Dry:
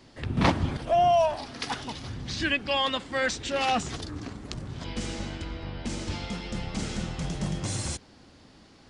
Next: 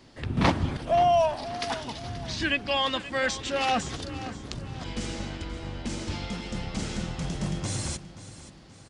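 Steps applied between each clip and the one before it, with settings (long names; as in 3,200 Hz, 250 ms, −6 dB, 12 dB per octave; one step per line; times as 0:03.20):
repeating echo 529 ms, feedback 41%, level −15 dB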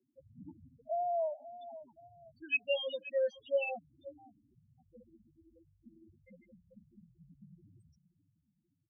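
spectral peaks only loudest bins 4
pair of resonant band-passes 1,200 Hz, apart 2.3 octaves
level +1 dB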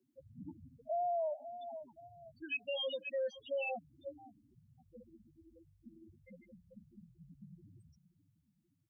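brickwall limiter −33 dBFS, peak gain reduction 11 dB
level +2 dB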